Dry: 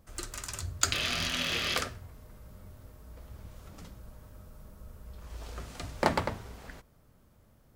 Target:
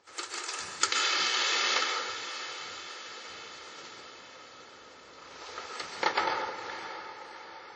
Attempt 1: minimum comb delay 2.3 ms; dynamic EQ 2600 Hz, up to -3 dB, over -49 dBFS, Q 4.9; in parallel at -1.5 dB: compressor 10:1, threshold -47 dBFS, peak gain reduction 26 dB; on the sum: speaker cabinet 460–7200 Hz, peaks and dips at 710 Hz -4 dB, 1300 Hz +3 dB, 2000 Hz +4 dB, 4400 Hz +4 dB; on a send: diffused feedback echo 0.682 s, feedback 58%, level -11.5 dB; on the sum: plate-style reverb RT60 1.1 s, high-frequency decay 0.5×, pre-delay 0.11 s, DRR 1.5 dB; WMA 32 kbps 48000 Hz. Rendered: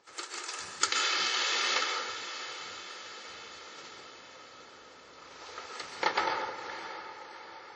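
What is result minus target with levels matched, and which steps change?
compressor: peak gain reduction +9 dB
change: compressor 10:1, threshold -37 dBFS, peak gain reduction 17 dB

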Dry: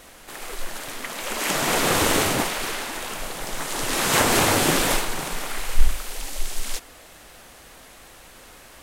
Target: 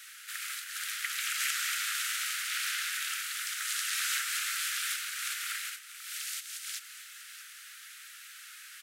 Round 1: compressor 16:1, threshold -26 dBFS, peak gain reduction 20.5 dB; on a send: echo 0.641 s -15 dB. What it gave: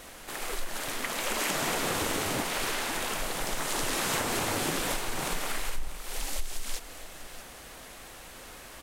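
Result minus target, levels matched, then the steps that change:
1000 Hz band +8.0 dB
add after compressor: steep high-pass 1300 Hz 96 dB/oct

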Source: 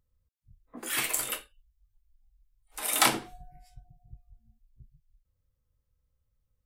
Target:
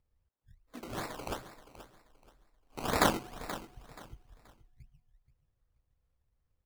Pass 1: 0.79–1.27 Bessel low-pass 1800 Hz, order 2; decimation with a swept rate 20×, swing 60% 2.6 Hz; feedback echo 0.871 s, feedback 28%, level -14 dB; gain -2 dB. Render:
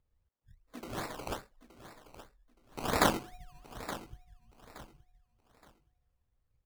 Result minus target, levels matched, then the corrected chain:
echo 0.392 s late
0.79–1.27 Bessel low-pass 1800 Hz, order 2; decimation with a swept rate 20×, swing 60% 2.6 Hz; feedback echo 0.479 s, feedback 28%, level -14 dB; gain -2 dB

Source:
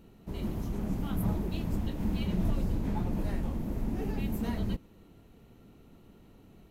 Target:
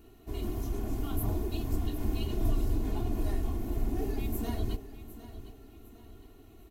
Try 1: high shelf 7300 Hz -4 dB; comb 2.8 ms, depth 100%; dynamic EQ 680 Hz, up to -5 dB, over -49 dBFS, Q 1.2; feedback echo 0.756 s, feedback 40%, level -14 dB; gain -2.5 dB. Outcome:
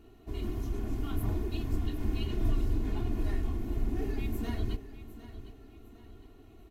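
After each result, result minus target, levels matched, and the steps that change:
8000 Hz band -6.0 dB; 2000 Hz band +2.5 dB
change: high shelf 7300 Hz +7.5 dB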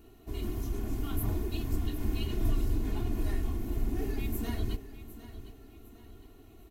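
2000 Hz band +3.0 dB
change: dynamic EQ 1900 Hz, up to -5 dB, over -49 dBFS, Q 1.2

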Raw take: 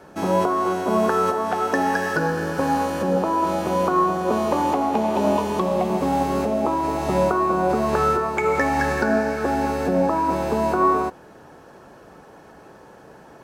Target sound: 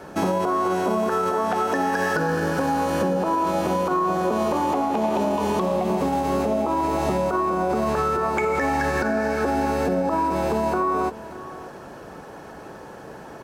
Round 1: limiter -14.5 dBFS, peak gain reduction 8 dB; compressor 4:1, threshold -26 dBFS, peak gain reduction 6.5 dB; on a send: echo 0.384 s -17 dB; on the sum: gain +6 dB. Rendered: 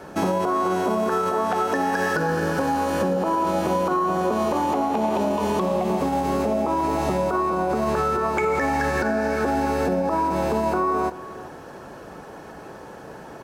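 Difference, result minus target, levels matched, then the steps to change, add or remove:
echo 0.205 s early
change: echo 0.589 s -17 dB

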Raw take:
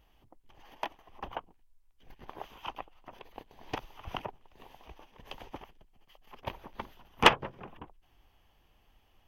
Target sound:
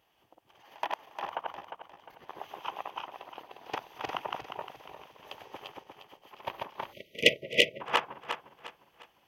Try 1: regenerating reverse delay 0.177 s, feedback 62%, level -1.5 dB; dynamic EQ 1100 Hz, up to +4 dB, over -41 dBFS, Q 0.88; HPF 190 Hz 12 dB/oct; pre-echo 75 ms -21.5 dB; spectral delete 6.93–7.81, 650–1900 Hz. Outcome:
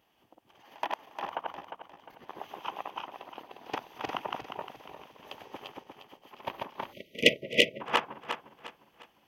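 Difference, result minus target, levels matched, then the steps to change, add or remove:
250 Hz band +4.5 dB
add after HPF: bell 240 Hz -7 dB 0.87 oct

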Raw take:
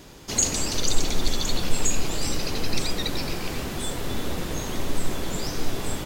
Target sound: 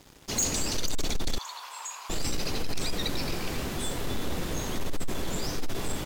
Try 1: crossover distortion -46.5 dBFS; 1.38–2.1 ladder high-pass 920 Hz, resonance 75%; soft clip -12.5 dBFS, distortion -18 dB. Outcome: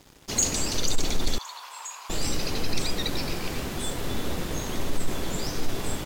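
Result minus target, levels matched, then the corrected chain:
soft clip: distortion -9 dB
crossover distortion -46.5 dBFS; 1.38–2.1 ladder high-pass 920 Hz, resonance 75%; soft clip -21 dBFS, distortion -9 dB

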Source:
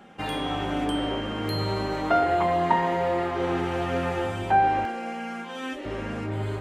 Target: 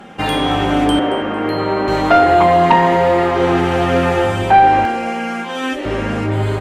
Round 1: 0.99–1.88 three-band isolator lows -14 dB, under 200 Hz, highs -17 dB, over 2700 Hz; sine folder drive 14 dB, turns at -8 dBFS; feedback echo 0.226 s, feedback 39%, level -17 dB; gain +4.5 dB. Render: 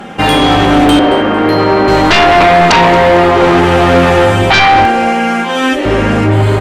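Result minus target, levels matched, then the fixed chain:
sine folder: distortion +18 dB
0.99–1.88 three-band isolator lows -14 dB, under 200 Hz, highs -17 dB, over 2700 Hz; sine folder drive 4 dB, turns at -8 dBFS; feedback echo 0.226 s, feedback 39%, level -17 dB; gain +4.5 dB

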